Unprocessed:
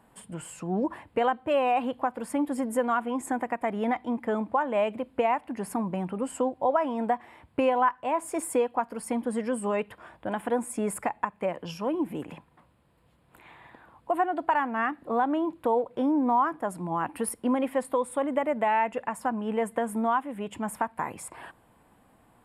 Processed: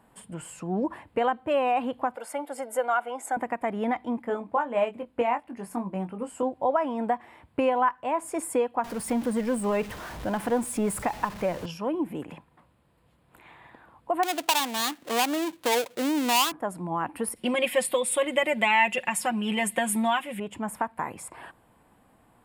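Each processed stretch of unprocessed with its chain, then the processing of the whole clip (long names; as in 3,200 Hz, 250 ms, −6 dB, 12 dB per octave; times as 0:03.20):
0:02.16–0:03.37: high-pass filter 370 Hz 24 dB per octave + comb filter 1.4 ms, depth 54%
0:04.22–0:06.43: double-tracking delay 21 ms −6 dB + expander for the loud parts, over −32 dBFS
0:08.84–0:11.66: converter with a step at zero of −36.5 dBFS + low-shelf EQ 110 Hz +9 dB
0:14.23–0:16.52: gap after every zero crossing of 0.23 ms + high-pass filter 210 Hz 6 dB per octave + high-shelf EQ 2,000 Hz +7.5 dB
0:17.36–0:20.40: high shelf with overshoot 1,800 Hz +12.5 dB, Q 1.5 + comb filter 5.5 ms, depth 80% + one half of a high-frequency compander decoder only
whole clip: no processing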